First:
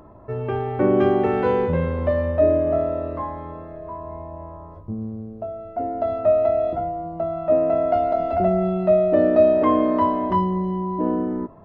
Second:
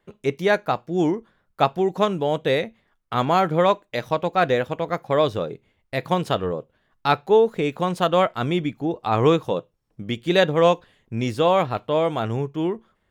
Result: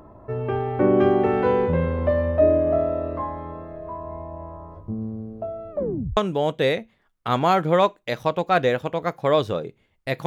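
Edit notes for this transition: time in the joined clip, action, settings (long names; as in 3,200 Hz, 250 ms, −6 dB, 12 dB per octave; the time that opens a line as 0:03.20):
first
0:05.71: tape stop 0.46 s
0:06.17: continue with second from 0:02.03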